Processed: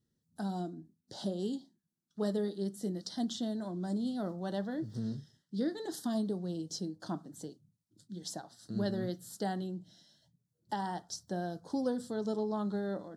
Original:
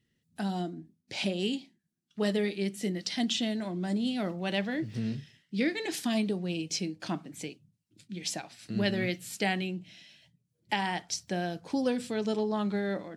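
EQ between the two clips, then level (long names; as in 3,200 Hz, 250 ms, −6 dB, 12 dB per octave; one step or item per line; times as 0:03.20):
dynamic equaliser 6,400 Hz, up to −4 dB, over −48 dBFS, Q 0.83
Butterworth band-reject 2,400 Hz, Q 1
−4.0 dB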